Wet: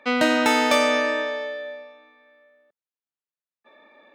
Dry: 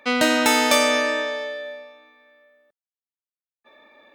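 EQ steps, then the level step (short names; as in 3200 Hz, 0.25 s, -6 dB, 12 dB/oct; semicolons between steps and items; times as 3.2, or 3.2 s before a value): HPF 100 Hz; high shelf 5200 Hz -12 dB; 0.0 dB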